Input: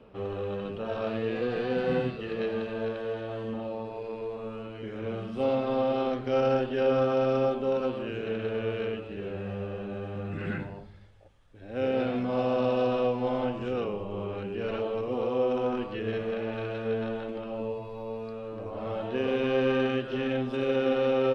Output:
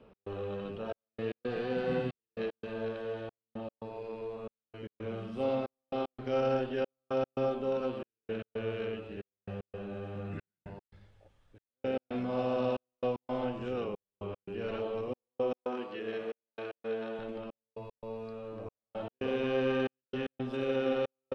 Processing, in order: 15.53–17.19 HPF 270 Hz 12 dB/oct; step gate "x.xxxxx.." 114 bpm -60 dB; gain -4.5 dB

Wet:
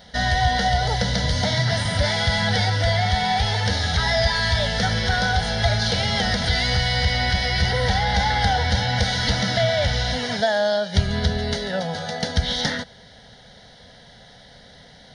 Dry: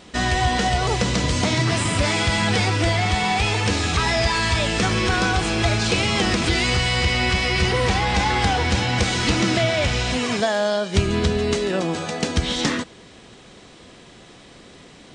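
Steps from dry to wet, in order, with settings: high shelf 8400 Hz +7 dB; fixed phaser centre 1700 Hz, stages 8; gain +1.5 dB

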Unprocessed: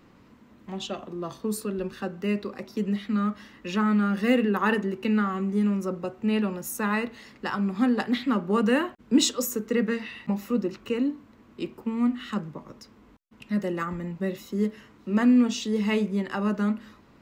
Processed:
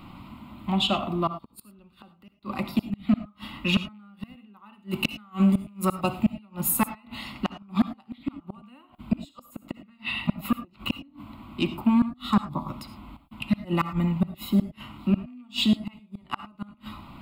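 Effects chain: rattling part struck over -23 dBFS, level -30 dBFS; 4.79–6.39 high shelf 3300 Hz +9.5 dB; 11.99–12.68 spectral gain 1400–3300 Hz -11 dB; flipped gate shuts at -19 dBFS, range -37 dB; fixed phaser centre 1700 Hz, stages 6; in parallel at -8 dB: sine folder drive 6 dB, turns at -20 dBFS; 1.27–2.47 on the sum: flipped gate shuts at -31 dBFS, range -30 dB; on a send at -12 dB: reverb, pre-delay 56 ms; on the sum: gain +6.5 dB

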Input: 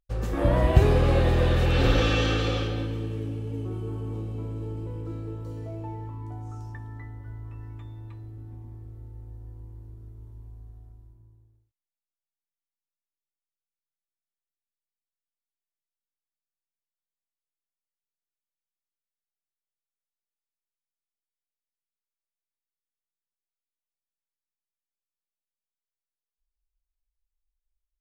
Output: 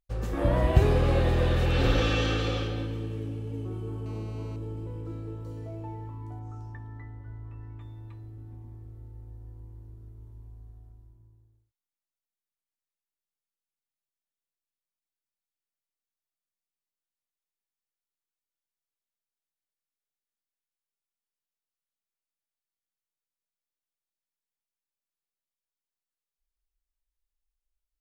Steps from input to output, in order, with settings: 4.06–4.56 GSM buzz -48 dBFS; 6.39–7.81 high shelf 5400 Hz -11.5 dB; gain -2.5 dB

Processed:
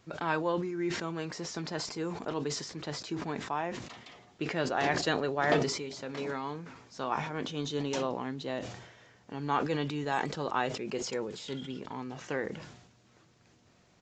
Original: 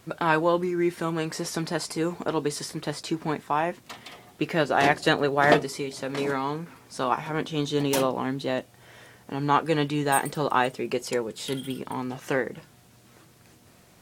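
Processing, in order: downsampling 16000 Hz; sustainer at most 59 dB/s; gain -8.5 dB

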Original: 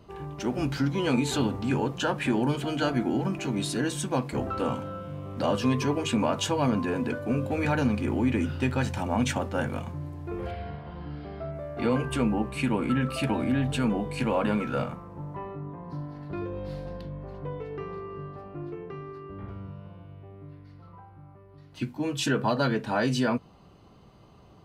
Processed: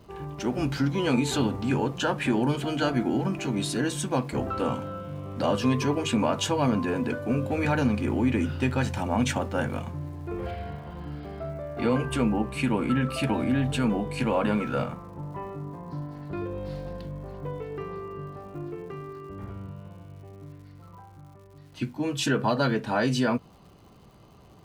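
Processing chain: crackle 190/s -51 dBFS; gain +1 dB

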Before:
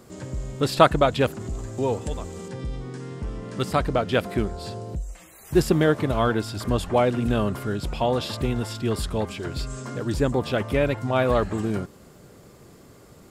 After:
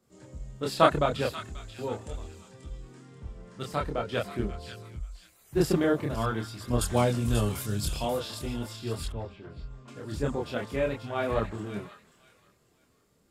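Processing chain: 6.81–8.05 tone controls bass +5 dB, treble +15 dB; thin delay 0.536 s, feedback 36%, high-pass 1600 Hz, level -7 dB; chorus voices 2, 0.44 Hz, delay 27 ms, depth 2.5 ms; 9.12–9.88 tape spacing loss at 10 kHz 28 dB; three-band expander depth 40%; gain -4.5 dB

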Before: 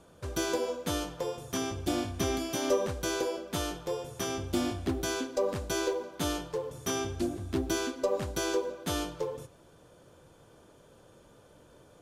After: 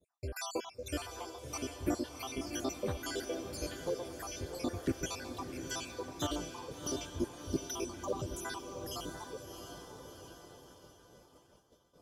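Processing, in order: random spectral dropouts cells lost 71%; diffused feedback echo 0.697 s, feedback 57%, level -7 dB; expander -51 dBFS; gain -1.5 dB

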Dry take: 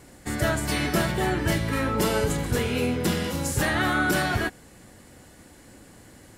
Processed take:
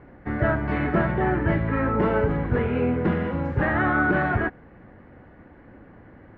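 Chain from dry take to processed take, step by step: LPF 1900 Hz 24 dB/oct; gain +2.5 dB

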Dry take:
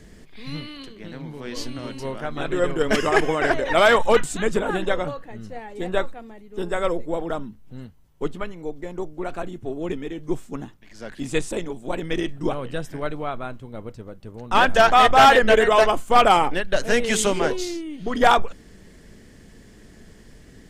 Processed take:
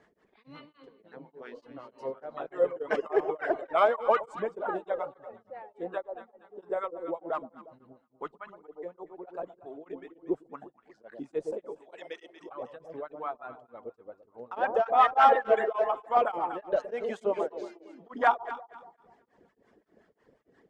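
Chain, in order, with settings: reverb removal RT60 1.1 s; 7.33–7.81 sample leveller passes 2; 11.68–12.49 weighting filter ITU-R 468; 15.7–16.17 compressor, threshold -17 dBFS, peak gain reduction 6 dB; wah 5.6 Hz 440–1200 Hz, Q 2.1; echo with dull and thin repeats by turns 0.118 s, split 900 Hz, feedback 58%, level -9 dB; beating tremolo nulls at 3.4 Hz

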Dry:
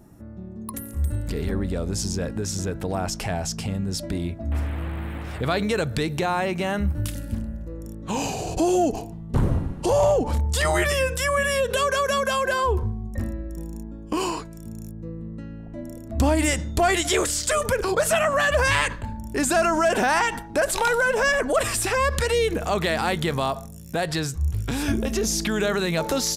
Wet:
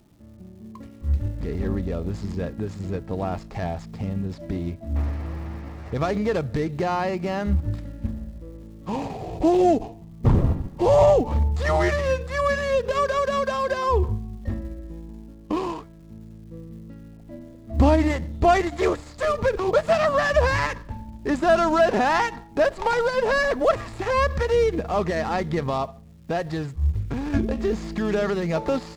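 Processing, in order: median filter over 15 samples; LPF 6200 Hz 12 dB/oct; notch 1500 Hz, Q 10; tempo 0.91×; crackle 480/s -47 dBFS; upward expander 1.5:1, over -38 dBFS; gain +4 dB

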